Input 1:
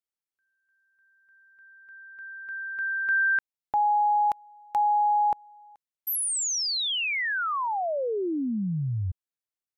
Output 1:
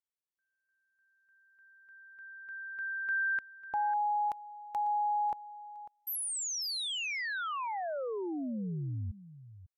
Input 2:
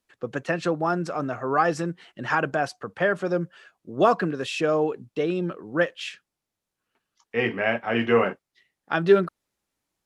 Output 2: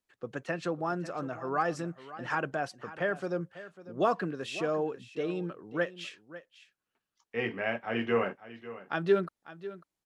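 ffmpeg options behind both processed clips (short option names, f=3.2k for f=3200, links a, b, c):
-af "aecho=1:1:547:0.168,volume=-8dB"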